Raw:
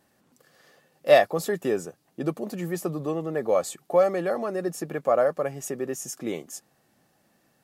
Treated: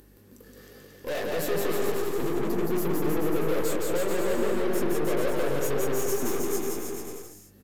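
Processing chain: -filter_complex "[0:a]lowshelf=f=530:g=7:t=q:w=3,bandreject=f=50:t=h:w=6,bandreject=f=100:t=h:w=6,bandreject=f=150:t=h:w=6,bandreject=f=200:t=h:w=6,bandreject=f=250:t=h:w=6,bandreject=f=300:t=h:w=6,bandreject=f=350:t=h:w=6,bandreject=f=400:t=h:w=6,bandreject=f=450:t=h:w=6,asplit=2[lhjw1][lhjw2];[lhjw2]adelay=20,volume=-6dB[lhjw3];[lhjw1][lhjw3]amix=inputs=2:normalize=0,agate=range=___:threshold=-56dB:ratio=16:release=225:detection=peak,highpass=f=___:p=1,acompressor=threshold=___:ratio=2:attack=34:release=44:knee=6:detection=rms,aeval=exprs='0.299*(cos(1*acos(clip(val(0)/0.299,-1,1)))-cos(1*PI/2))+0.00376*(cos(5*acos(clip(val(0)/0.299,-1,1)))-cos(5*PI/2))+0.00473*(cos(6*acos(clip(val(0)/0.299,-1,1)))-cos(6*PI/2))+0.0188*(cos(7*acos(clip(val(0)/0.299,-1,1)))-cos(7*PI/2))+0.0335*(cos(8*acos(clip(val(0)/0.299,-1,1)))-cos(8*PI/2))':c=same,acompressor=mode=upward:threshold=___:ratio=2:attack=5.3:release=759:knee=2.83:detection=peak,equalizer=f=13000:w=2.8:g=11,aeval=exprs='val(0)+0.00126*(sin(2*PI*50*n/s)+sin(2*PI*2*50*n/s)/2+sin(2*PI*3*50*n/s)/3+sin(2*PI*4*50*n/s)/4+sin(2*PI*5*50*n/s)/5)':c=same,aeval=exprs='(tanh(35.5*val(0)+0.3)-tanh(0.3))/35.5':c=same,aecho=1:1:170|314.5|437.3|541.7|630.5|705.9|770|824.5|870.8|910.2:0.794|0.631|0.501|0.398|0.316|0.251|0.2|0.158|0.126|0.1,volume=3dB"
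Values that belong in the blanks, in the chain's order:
-8dB, 140, -27dB, -44dB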